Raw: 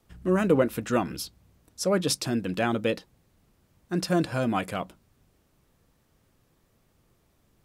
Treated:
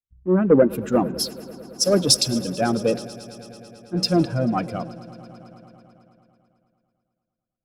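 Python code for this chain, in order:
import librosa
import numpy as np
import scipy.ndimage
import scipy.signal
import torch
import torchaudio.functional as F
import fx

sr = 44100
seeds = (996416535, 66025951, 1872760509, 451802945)

y = fx.spec_expand(x, sr, power=1.6)
y = fx.notch(y, sr, hz=1800.0, q=11.0)
y = fx.leveller(y, sr, passes=1)
y = fx.echo_swell(y, sr, ms=110, loudest=5, wet_db=-16.5)
y = fx.band_widen(y, sr, depth_pct=100)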